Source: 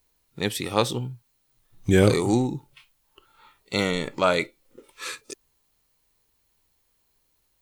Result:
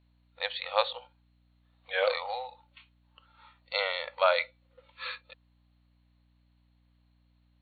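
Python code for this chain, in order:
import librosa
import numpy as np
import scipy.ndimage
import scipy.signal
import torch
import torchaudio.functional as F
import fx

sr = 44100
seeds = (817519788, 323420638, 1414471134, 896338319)

y = fx.brickwall_bandpass(x, sr, low_hz=480.0, high_hz=4500.0)
y = fx.add_hum(y, sr, base_hz=60, snr_db=31)
y = y * librosa.db_to_amplitude(-2.5)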